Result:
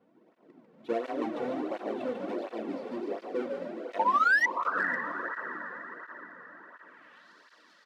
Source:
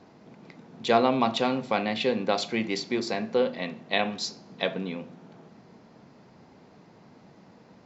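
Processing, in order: half-waves squared off; notch comb 410 Hz; frequency-shifting echo 0.146 s, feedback 53%, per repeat +51 Hz, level -4.5 dB; band-pass sweep 380 Hz -> 4500 Hz, 6.37–7.3; painted sound rise, 3.99–4.46, 860–2000 Hz -22 dBFS; tilt shelf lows -8 dB, about 870 Hz; on a send: diffused feedback echo 0.511 s, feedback 50%, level -7 dB; on the sum: hard clip -17.5 dBFS, distortion -18 dB; high shelf 4400 Hz -11 dB; tape flanging out of phase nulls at 1.4 Hz, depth 3.3 ms

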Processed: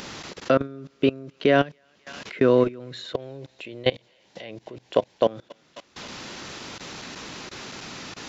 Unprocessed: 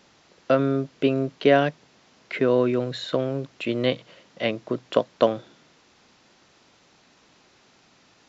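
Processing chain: 3.13–5.26 thirty-one-band EQ 160 Hz -6 dB, 250 Hz -7 dB, 800 Hz +6 dB, 1250 Hz -11 dB; thinning echo 0.27 s, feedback 71%, high-pass 1100 Hz, level -23 dB; upward compressor, threshold -28 dBFS; bell 700 Hz -3.5 dB 0.69 oct; level quantiser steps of 22 dB; gain +5.5 dB

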